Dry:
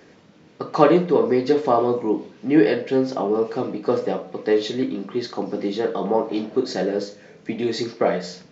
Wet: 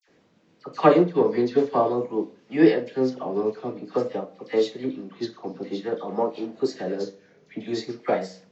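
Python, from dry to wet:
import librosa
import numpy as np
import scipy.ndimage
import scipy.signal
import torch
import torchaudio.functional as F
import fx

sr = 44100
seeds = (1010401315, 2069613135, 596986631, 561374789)

y = fx.dispersion(x, sr, late='lows', ms=73.0, hz=1400.0)
y = fx.vibrato(y, sr, rate_hz=0.51, depth_cents=73.0)
y = fx.upward_expand(y, sr, threshold_db=-31.0, expansion=1.5)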